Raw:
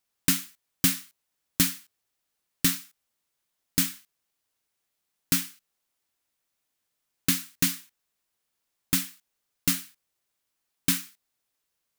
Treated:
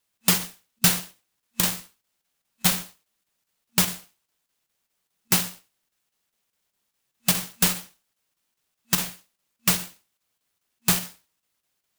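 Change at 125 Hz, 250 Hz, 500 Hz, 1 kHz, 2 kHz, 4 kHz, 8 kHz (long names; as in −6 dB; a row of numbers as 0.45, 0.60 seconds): +4.0, +0.5, +10.5, +11.0, +4.5, +4.5, +3.5 decibels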